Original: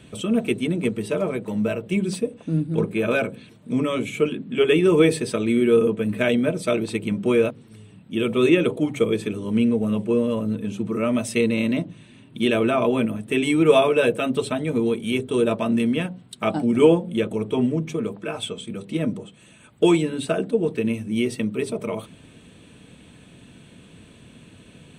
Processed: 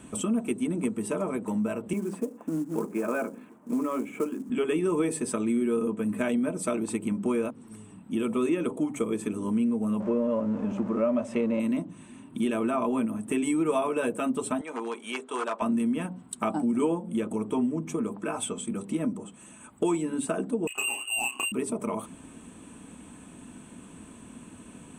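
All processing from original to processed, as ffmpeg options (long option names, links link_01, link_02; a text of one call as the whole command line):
ffmpeg -i in.wav -filter_complex "[0:a]asettb=1/sr,asplit=3[link_01][link_02][link_03];[link_01]atrim=end=1.934[link_04];[link_02]atrim=start=1.93:end=4.5,asetpts=PTS-STARTPTS,afade=type=in:duration=0.004:curve=qsin,afade=type=out:start_time=2.566:duration=0.004:curve=qsin,acrossover=split=220 2200:gain=0.158 1 0.1[link_05][link_06][link_07];[link_05][link_06][link_07]amix=inputs=3:normalize=0,acrusher=bits=6:mode=log:mix=0:aa=0.000001[link_08];[link_03]atrim=start=4.496[link_09];[link_04][link_08]acrossfade=duration=0.004:curve1=hsin:curve2=qsin[link_10];[link_10][link_09]acrossfade=duration=0.004:curve1=qsin:curve2=hsin,asettb=1/sr,asplit=3[link_11][link_12][link_13];[link_11]atrim=end=10.004[link_14];[link_12]atrim=start=10:end=11.6,asetpts=PTS-STARTPTS,afade=type=in:duration=0.004:curve=qsin,afade=type=out:start_time=1.596:duration=0.004:curve=qsin,aeval=exprs='val(0)+0.5*0.0224*sgn(val(0))':channel_layout=same,lowpass=3000,equalizer=frequency=570:width_type=o:width=0.31:gain=14[link_15];[link_13]atrim=start=11.596[link_16];[link_14][link_15]acrossfade=duration=0.004:curve1=hsin:curve2=qsin[link_17];[link_17][link_16]acrossfade=duration=0.004:curve1=qsin:curve2=hsin,asettb=1/sr,asplit=3[link_18][link_19][link_20];[link_18]atrim=end=14.614[link_21];[link_19]atrim=start=14.61:end=15.62,asetpts=PTS-STARTPTS,afade=type=in:duration=0.004:curve=qsin,afade=type=out:start_time=1.006:duration=0.004:curve=qsin,aeval=exprs='0.178*(abs(mod(val(0)/0.178+3,4)-2)-1)':channel_layout=same,highpass=720,lowpass=5700[link_22];[link_20]atrim=start=15.616[link_23];[link_21][link_22]acrossfade=duration=0.004:curve1=hsin:curve2=qsin[link_24];[link_24][link_23]acrossfade=duration=0.004:curve1=qsin:curve2=hsin,asettb=1/sr,asplit=3[link_25][link_26][link_27];[link_25]atrim=end=20.674[link_28];[link_26]atrim=start=20.67:end=21.52,asetpts=PTS-STARTPTS,afade=type=in:duration=0.004:curve=qsin,afade=type=out:start_time=0.846:duration=0.004:curve=qsin,asplit=2[link_29][link_30];[link_30]adelay=32,volume=-5dB[link_31];[link_29][link_31]amix=inputs=2:normalize=0,atrim=end_sample=37485,lowpass=frequency=2600:width_type=q:width=0.5098,lowpass=frequency=2600:width_type=q:width=0.6013,lowpass=frequency=2600:width_type=q:width=0.9,lowpass=frequency=2600:width_type=q:width=2.563,afreqshift=-3000,adynamicsmooth=sensitivity=6:basefreq=1300[link_32];[link_27]atrim=start=21.516[link_33];[link_28][link_32]acrossfade=duration=0.004:curve1=hsin:curve2=qsin[link_34];[link_34][link_33]acrossfade=duration=0.004:curve1=qsin:curve2=hsin,equalizer=frequency=125:width_type=o:width=1:gain=-9,equalizer=frequency=250:width_type=o:width=1:gain=7,equalizer=frequency=500:width_type=o:width=1:gain=-5,equalizer=frequency=1000:width_type=o:width=1:gain=8,equalizer=frequency=2000:width_type=o:width=1:gain=-3,equalizer=frequency=4000:width_type=o:width=1:gain=-11,equalizer=frequency=8000:width_type=o:width=1:gain=9,acompressor=threshold=-28dB:ratio=2.5" out.wav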